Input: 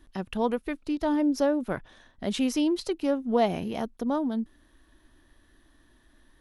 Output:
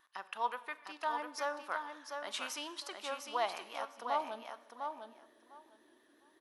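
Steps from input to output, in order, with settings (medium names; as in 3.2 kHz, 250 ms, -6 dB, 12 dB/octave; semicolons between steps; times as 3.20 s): Schroeder reverb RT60 1.1 s, combs from 30 ms, DRR 14.5 dB; high-pass sweep 1.1 kHz -> 370 Hz, 3.96–5.26 s; vibrato 5.7 Hz 42 cents; on a send: feedback delay 703 ms, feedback 15%, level -6 dB; on the sum: trim -6 dB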